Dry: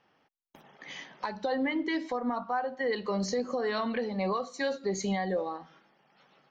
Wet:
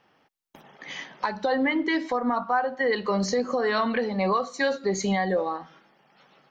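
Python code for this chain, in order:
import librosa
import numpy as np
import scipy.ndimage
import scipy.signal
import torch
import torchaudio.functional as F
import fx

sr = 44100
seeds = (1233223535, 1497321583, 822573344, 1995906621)

y = fx.dynamic_eq(x, sr, hz=1400.0, q=1.1, threshold_db=-46.0, ratio=4.0, max_db=4)
y = y * librosa.db_to_amplitude(5.0)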